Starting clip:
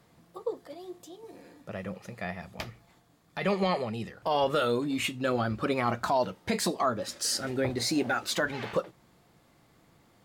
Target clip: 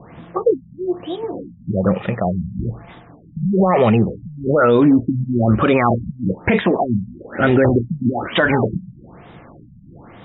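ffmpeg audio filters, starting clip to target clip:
ffmpeg -i in.wav -af "alimiter=level_in=25.5dB:limit=-1dB:release=50:level=0:latency=1,afftfilt=real='re*lt(b*sr/1024,220*pow(3900/220,0.5+0.5*sin(2*PI*1.1*pts/sr)))':imag='im*lt(b*sr/1024,220*pow(3900/220,0.5+0.5*sin(2*PI*1.1*pts/sr)))':win_size=1024:overlap=0.75,volume=-4dB" out.wav

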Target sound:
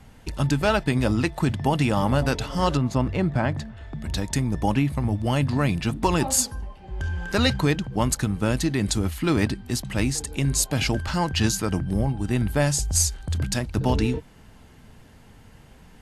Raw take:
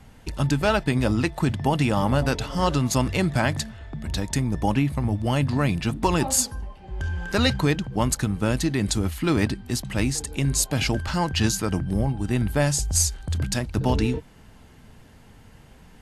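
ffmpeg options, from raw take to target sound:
ffmpeg -i in.wav -filter_complex "[0:a]asettb=1/sr,asplit=3[link_01][link_02][link_03];[link_01]atrim=end=2.774[link_04];[link_02]atrim=start=2.77:end=3.77,asetpts=PTS-STARTPTS,afade=type=in:duration=0.004:curve=qsin,afade=type=out:start_time=0.996:duration=0.004:curve=qsin,lowpass=frequency=1200:poles=1[link_05];[link_03]atrim=start=3.766[link_06];[link_04][link_05]acrossfade=duration=0.004:curve1=hsin:curve2=qsin[link_07];[link_07][link_06]acrossfade=duration=0.004:curve1=qsin:curve2=hsin" out.wav

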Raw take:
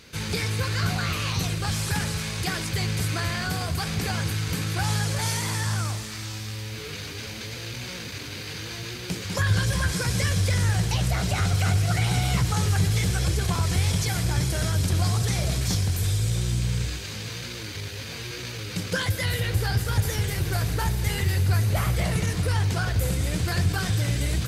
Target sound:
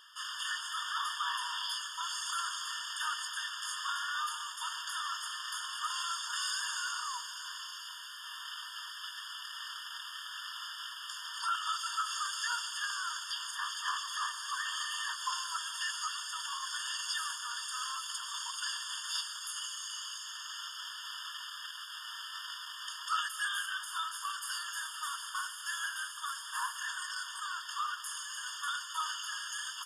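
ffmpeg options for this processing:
ffmpeg -i in.wav -af "asetrate=36162,aresample=44100,flanger=delay=3.4:depth=7.4:regen=84:speed=0.86:shape=sinusoidal,afftfilt=real='re*eq(mod(floor(b*sr/1024/910),2),1)':imag='im*eq(mod(floor(b*sr/1024/910),2),1)':win_size=1024:overlap=0.75,volume=2dB" out.wav

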